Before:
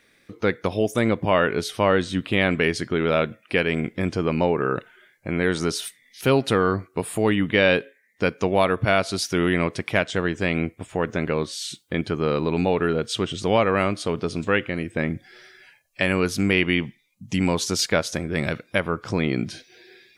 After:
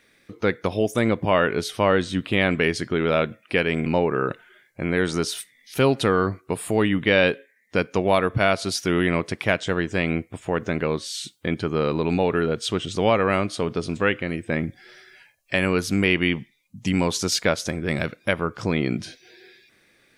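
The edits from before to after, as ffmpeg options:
-filter_complex "[0:a]asplit=2[s0][s1];[s0]atrim=end=3.862[s2];[s1]atrim=start=4.328[s3];[s2][s3]acrossfade=d=0.004:c1=hsin:c2=hsin"

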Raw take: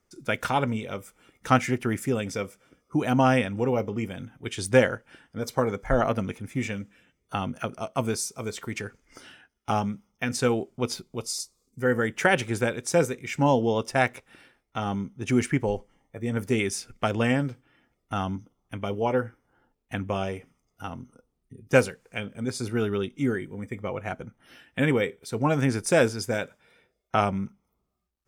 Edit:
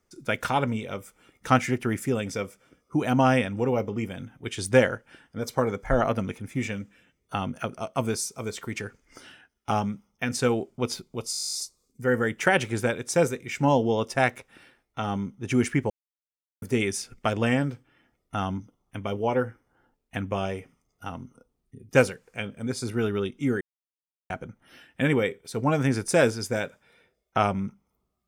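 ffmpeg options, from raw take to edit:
-filter_complex "[0:a]asplit=16[s0][s1][s2][s3][s4][s5][s6][s7][s8][s9][s10][s11][s12][s13][s14][s15];[s0]atrim=end=11.342[s16];[s1]atrim=start=11.318:end=11.342[s17];[s2]atrim=start=11.318:end=11.342[s18];[s3]atrim=start=11.318:end=11.342[s19];[s4]atrim=start=11.318:end=11.342[s20];[s5]atrim=start=11.318:end=11.342[s21];[s6]atrim=start=11.318:end=11.342[s22];[s7]atrim=start=11.318:end=11.342[s23];[s8]atrim=start=11.318:end=11.342[s24];[s9]atrim=start=11.318:end=11.342[s25];[s10]atrim=start=11.318:end=11.342[s26];[s11]atrim=start=11.318:end=15.68,asetpts=PTS-STARTPTS,afade=t=out:st=4.358:d=0.004:c=hsin[s27];[s12]atrim=start=15.68:end=16.4,asetpts=PTS-STARTPTS,volume=0[s28];[s13]atrim=start=16.4:end=23.39,asetpts=PTS-STARTPTS,afade=t=in:d=0.004:c=hsin,afade=t=out:st=6.986:d=0.004:c=hsin[s29];[s14]atrim=start=23.39:end=24.08,asetpts=PTS-STARTPTS,volume=0[s30];[s15]atrim=start=24.08,asetpts=PTS-STARTPTS,afade=t=in:d=0.004:c=hsin[s31];[s16][s17]acrossfade=d=0.004:c1=hsin:c2=hsin[s32];[s32][s18]acrossfade=d=0.004:c1=hsin:c2=hsin[s33];[s33][s19]acrossfade=d=0.004:c1=hsin:c2=hsin[s34];[s34][s20]acrossfade=d=0.004:c1=hsin:c2=hsin[s35];[s35][s21]acrossfade=d=0.004:c1=hsin:c2=hsin[s36];[s36][s22]acrossfade=d=0.004:c1=hsin:c2=hsin[s37];[s37][s23]acrossfade=d=0.004:c1=hsin:c2=hsin[s38];[s38][s24]acrossfade=d=0.004:c1=hsin:c2=hsin[s39];[s39][s25]acrossfade=d=0.004:c1=hsin:c2=hsin[s40];[s40][s26]acrossfade=d=0.004:c1=hsin:c2=hsin[s41];[s27][s28][s29][s30][s31]concat=n=5:v=0:a=1[s42];[s41][s42]acrossfade=d=0.004:c1=hsin:c2=hsin"

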